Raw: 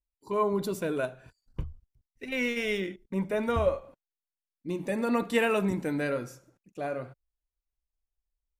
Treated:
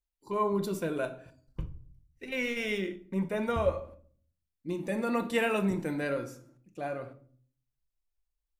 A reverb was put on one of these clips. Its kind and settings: shoebox room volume 530 m³, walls furnished, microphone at 0.83 m; gain -2.5 dB

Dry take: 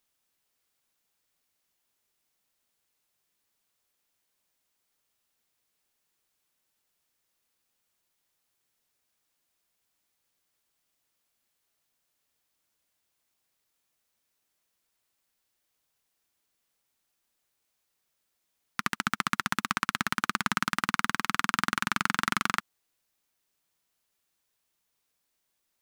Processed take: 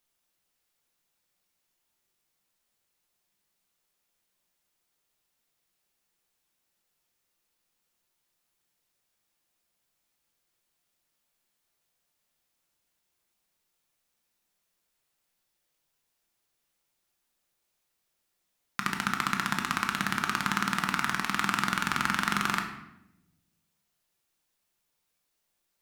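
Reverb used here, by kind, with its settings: shoebox room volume 310 m³, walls mixed, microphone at 0.85 m; gain -1.5 dB

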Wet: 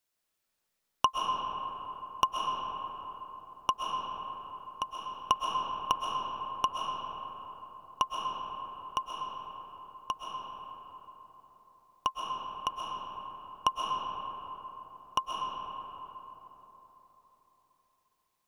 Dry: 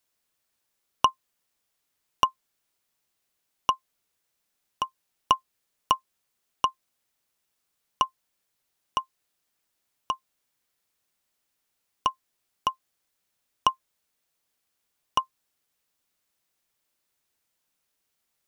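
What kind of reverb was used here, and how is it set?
digital reverb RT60 4.1 s, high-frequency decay 0.4×, pre-delay 90 ms, DRR -1 dB; gain -5 dB

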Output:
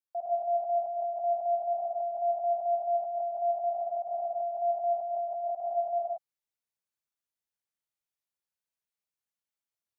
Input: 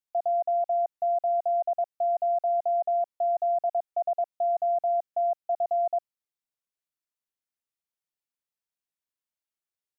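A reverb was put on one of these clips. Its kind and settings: non-linear reverb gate 0.2 s rising, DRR -5 dB; gain -8 dB

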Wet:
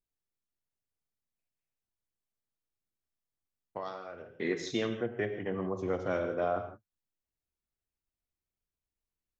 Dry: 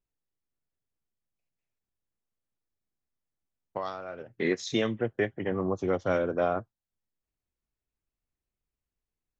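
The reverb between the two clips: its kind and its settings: non-linear reverb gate 0.19 s flat, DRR 6.5 dB; gain -5.5 dB

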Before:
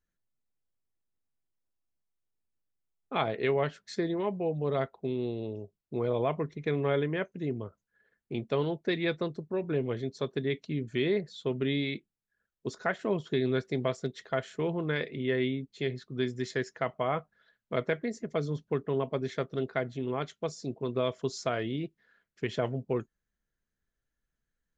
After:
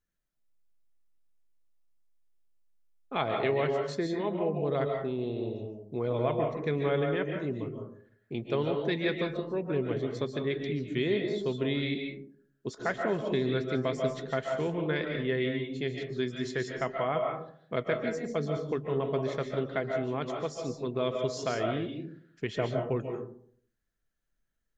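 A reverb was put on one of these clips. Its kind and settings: digital reverb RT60 0.59 s, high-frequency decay 0.35×, pre-delay 0.105 s, DRR 2.5 dB; gain -1 dB

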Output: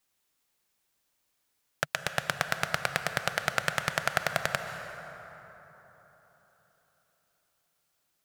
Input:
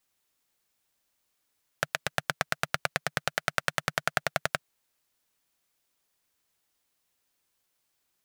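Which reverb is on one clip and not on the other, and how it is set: plate-style reverb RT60 4 s, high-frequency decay 0.45×, pre-delay 0.115 s, DRR 7.5 dB

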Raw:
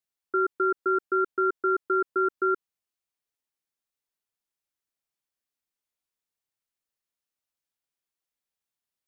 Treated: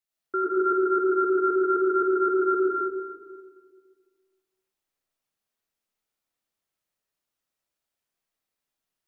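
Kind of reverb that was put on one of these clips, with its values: digital reverb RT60 1.8 s, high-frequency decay 0.35×, pre-delay 55 ms, DRR -7 dB; gain -2 dB

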